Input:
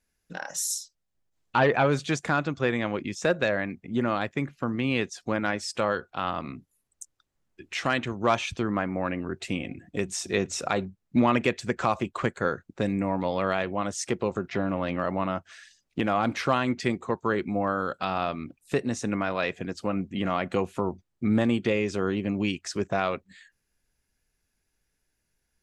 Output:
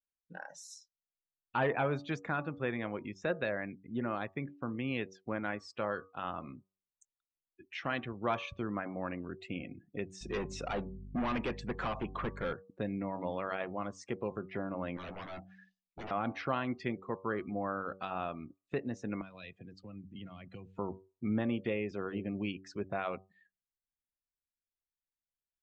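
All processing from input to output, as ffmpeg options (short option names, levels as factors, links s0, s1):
-filter_complex "[0:a]asettb=1/sr,asplit=3[s0][s1][s2];[s0]atrim=end=10.214[s3];[s1]atrim=start=10.21:end=12.53,asetpts=PTS-STARTPTS,afade=t=in:d=0.004:c=qsin,afade=t=out:st=2.316:d=0.004:c=qsin,acontrast=26,volume=12.6,asoftclip=hard,volume=0.0794,aeval=exprs='val(0)+0.0141*(sin(2*PI*50*n/s)+sin(2*PI*2*50*n/s)/2+sin(2*PI*3*50*n/s)/3+sin(2*PI*4*50*n/s)/4+sin(2*PI*5*50*n/s)/5)':c=same[s4];[s2]atrim=start=12.526[s5];[s3][s4]acrossfade=d=0.004:c1=hsin:c2=qsin[s6];[s6][s5]acrossfade=d=0.004:c1=qsin:c2=hsin,asettb=1/sr,asplit=3[s7][s8][s9];[s7]atrim=end=14.974[s10];[s8]atrim=start=14.97:end=16.11,asetpts=PTS-STARTPTS,afade=t=in:d=0.004:c=qsin,afade=t=out:st=1.136:d=0.004:c=qsin,bandreject=f=62.99:t=h:w=4,bandreject=f=125.98:t=h:w=4,bandreject=f=188.97:t=h:w=4,bandreject=f=251.96:t=h:w=4,bandreject=f=314.95:t=h:w=4,bandreject=f=377.94:t=h:w=4,bandreject=f=440.93:t=h:w=4,bandreject=f=503.92:t=h:w=4,bandreject=f=566.91:t=h:w=4,bandreject=f=629.9:t=h:w=4,bandreject=f=692.89:t=h:w=4,bandreject=f=755.88:t=h:w=4,bandreject=f=818.87:t=h:w=4,bandreject=f=881.86:t=h:w=4,aeval=exprs='0.0355*(abs(mod(val(0)/0.0355+3,4)-2)-1)':c=same,asplit=2[s11][s12];[s12]adelay=12,volume=0.473[s13];[s11][s13]amix=inputs=2:normalize=0,atrim=end_sample=50274[s14];[s9]atrim=start=16.106[s15];[s10][s14]acrossfade=d=0.004:c1=hsin:c2=qsin[s16];[s16][s15]acrossfade=d=0.004:c1=qsin:c2=hsin,asettb=1/sr,asplit=3[s17][s18][s19];[s17]atrim=end=19.214[s20];[s18]atrim=start=19.21:end=20.79,asetpts=PTS-STARTPTS,afade=t=in:d=0.004:c=qsin,afade=t=out:st=1.576:d=0.004:c=qsin,highshelf=f=8600:g=6,acrossover=split=150|3000[s21][s22][s23];[s22]acompressor=threshold=0.00891:ratio=5:attack=3.2:release=140:knee=2.83:detection=peak[s24];[s21][s24][s23]amix=inputs=3:normalize=0[s25];[s19]atrim=start=20.786[s26];[s20][s25]acrossfade=d=0.004:c1=hsin:c2=qsin[s27];[s27][s26]acrossfade=d=0.004:c1=qsin:c2=hsin,bandreject=f=95.24:t=h:w=4,bandreject=f=190.48:t=h:w=4,bandreject=f=285.72:t=h:w=4,bandreject=f=380.96:t=h:w=4,bandreject=f=476.2:t=h:w=4,bandreject=f=571.44:t=h:w=4,bandreject=f=666.68:t=h:w=4,bandreject=f=761.92:t=h:w=4,bandreject=f=857.16:t=h:w=4,bandreject=f=952.4:t=h:w=4,bandreject=f=1047.64:t=h:w=4,bandreject=f=1142.88:t=h:w=4,bandreject=f=1238.12:t=h:w=4,afftdn=nr=19:nf=-41,lowpass=3700,volume=0.355"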